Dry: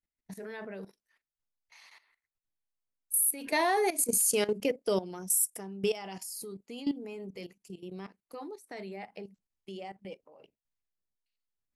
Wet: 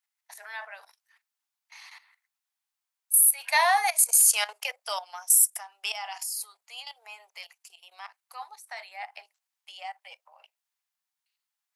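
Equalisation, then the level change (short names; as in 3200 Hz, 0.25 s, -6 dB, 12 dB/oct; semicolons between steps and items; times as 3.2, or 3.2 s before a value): steep high-pass 730 Hz 48 dB/oct; +8.0 dB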